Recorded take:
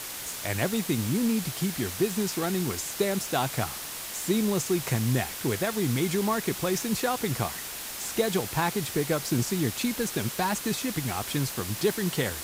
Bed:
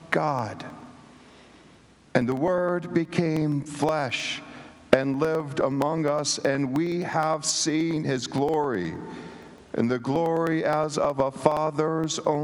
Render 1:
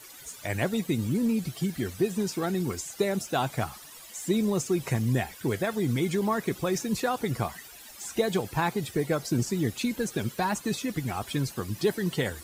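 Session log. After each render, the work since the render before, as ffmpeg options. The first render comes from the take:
ffmpeg -i in.wav -af "afftdn=noise_reduction=15:noise_floor=-37" out.wav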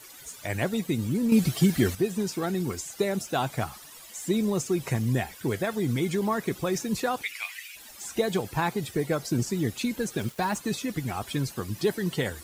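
ffmpeg -i in.wav -filter_complex "[0:a]asplit=3[link_01][link_02][link_03];[link_01]afade=type=out:start_time=7.21:duration=0.02[link_04];[link_02]highpass=frequency=2400:width_type=q:width=6.4,afade=type=in:start_time=7.21:duration=0.02,afade=type=out:start_time=7.75:duration=0.02[link_05];[link_03]afade=type=in:start_time=7.75:duration=0.02[link_06];[link_04][link_05][link_06]amix=inputs=3:normalize=0,asettb=1/sr,asplit=3[link_07][link_08][link_09];[link_07]atrim=end=10.174[link_10];[link_08]atrim=start=10.17:end=10.58,asetpts=PTS-STARTPTS,afade=type=in:duration=0.004:curve=qsin,afade=type=out:start_time=0.406:duration=0.004:curve=qsin,aeval=exprs='val(0)*gte(abs(val(0)),0.00794)':channel_layout=same[link_11];[link_09]atrim=start=10.576[link_12];[link_10][link_11]acrossfade=duration=0.004:curve1=hsin:curve2=qsin[link_13];[link_13][link_12]acrossfade=duration=0.004:curve1=qsin:curve2=hsin,asplit=3[link_14][link_15][link_16];[link_14]atrim=end=1.322[link_17];[link_15]atrim=start=1.318:end=1.952,asetpts=PTS-STARTPTS,volume=8dB[link_18];[link_16]atrim=start=1.948[link_19];[link_17][link_18]acrossfade=duration=0.004:curve1=hsin:curve2=hsin[link_20];[link_20][link_19]acrossfade=duration=0.004:curve1=hsin:curve2=hsin" out.wav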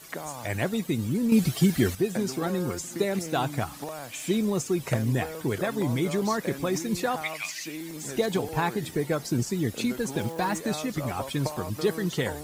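ffmpeg -i in.wav -i bed.wav -filter_complex "[1:a]volume=-13dB[link_01];[0:a][link_01]amix=inputs=2:normalize=0" out.wav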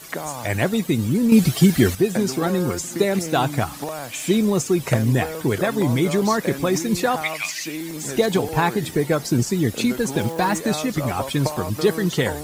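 ffmpeg -i in.wav -af "volume=7dB" out.wav

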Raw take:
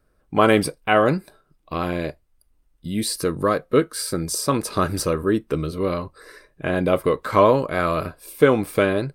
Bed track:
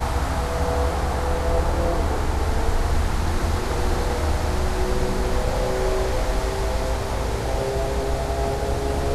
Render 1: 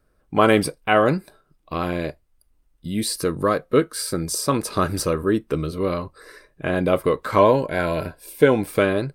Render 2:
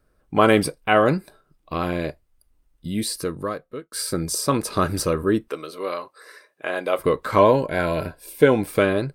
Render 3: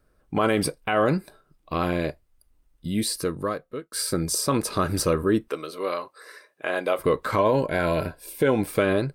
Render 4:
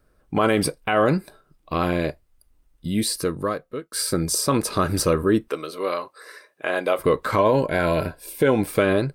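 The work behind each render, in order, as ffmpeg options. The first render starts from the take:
ffmpeg -i in.wav -filter_complex "[0:a]asettb=1/sr,asplit=3[link_01][link_02][link_03];[link_01]atrim=end=7.384[link_04];[link_02]atrim=start=7.38:end=8.68,asetpts=PTS-STARTPTS,afade=type=in:duration=0.004:curve=qsin,afade=type=out:start_time=1.296:duration=0.004:curve=qsin,asuperstop=centerf=1200:order=12:qfactor=4.8[link_05];[link_03]atrim=start=8.676[link_06];[link_04][link_05]acrossfade=duration=0.004:curve1=hsin:curve2=qsin[link_07];[link_07][link_06]acrossfade=duration=0.004:curve1=qsin:curve2=hsin" out.wav
ffmpeg -i in.wav -filter_complex "[0:a]asettb=1/sr,asplit=3[link_01][link_02][link_03];[link_01]atrim=end=5.484[link_04];[link_02]atrim=start=5.48:end=6.99,asetpts=PTS-STARTPTS,afade=type=in:duration=0.004:curve=qsin,afade=type=out:start_time=1.506:duration=0.004:curve=qsin,highpass=540[link_05];[link_03]atrim=start=6.986[link_06];[link_04][link_05]acrossfade=duration=0.004:curve1=hsin:curve2=qsin[link_07];[link_07][link_06]acrossfade=duration=0.004:curve1=qsin:curve2=hsin,asplit=2[link_08][link_09];[link_08]atrim=end=3.92,asetpts=PTS-STARTPTS,afade=type=out:start_time=2.88:duration=1.04[link_10];[link_09]atrim=start=3.92,asetpts=PTS-STARTPTS,afade=type=in:duration=0.004:curve=hsin[link_11];[link_10][link_11]concat=n=2:v=0:a=1" out.wav
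ffmpeg -i in.wav -af "alimiter=limit=-11.5dB:level=0:latency=1:release=78" out.wav
ffmpeg -i in.wav -af "volume=2.5dB" out.wav

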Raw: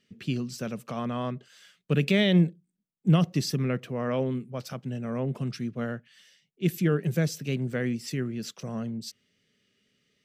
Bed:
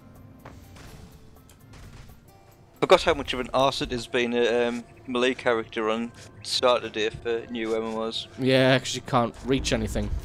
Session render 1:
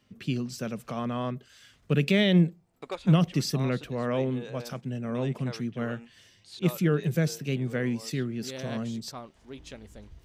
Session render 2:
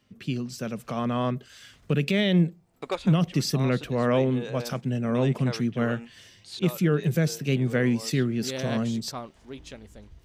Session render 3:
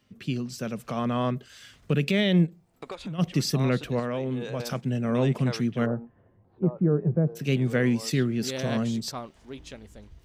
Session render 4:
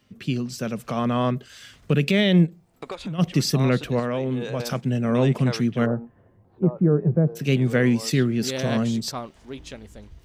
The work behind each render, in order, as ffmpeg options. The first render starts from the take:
ffmpeg -i in.wav -i bed.wav -filter_complex "[1:a]volume=-19.5dB[link_01];[0:a][link_01]amix=inputs=2:normalize=0" out.wav
ffmpeg -i in.wav -af "alimiter=limit=-19dB:level=0:latency=1:release=480,dynaudnorm=framelen=180:gausssize=11:maxgain=6dB" out.wav
ffmpeg -i in.wav -filter_complex "[0:a]asplit=3[link_01][link_02][link_03];[link_01]afade=type=out:start_time=2.45:duration=0.02[link_04];[link_02]acompressor=threshold=-33dB:ratio=6:attack=3.2:release=140:knee=1:detection=peak,afade=type=in:start_time=2.45:duration=0.02,afade=type=out:start_time=3.18:duration=0.02[link_05];[link_03]afade=type=in:start_time=3.18:duration=0.02[link_06];[link_04][link_05][link_06]amix=inputs=3:normalize=0,asettb=1/sr,asplit=3[link_07][link_08][link_09];[link_07]atrim=end=3.994[link_10];[link_08]atrim=start=3.99:end=4.6,asetpts=PTS-STARTPTS,afade=type=in:duration=0.004:curve=qsin,afade=type=out:start_time=0.606:duration=0.004:curve=qsin,acompressor=threshold=-26dB:ratio=5:attack=3.2:release=140:knee=1:detection=peak[link_11];[link_09]atrim=start=4.596[link_12];[link_10][link_11]acrossfade=duration=0.004:curve1=hsin:curve2=qsin[link_13];[link_13][link_12]acrossfade=duration=0.004:curve1=qsin:curve2=hsin,asplit=3[link_14][link_15][link_16];[link_14]afade=type=out:start_time=5.85:duration=0.02[link_17];[link_15]lowpass=frequency=1000:width=0.5412,lowpass=frequency=1000:width=1.3066,afade=type=in:start_time=5.85:duration=0.02,afade=type=out:start_time=7.35:duration=0.02[link_18];[link_16]afade=type=in:start_time=7.35:duration=0.02[link_19];[link_17][link_18][link_19]amix=inputs=3:normalize=0" out.wav
ffmpeg -i in.wav -af "volume=4dB" out.wav

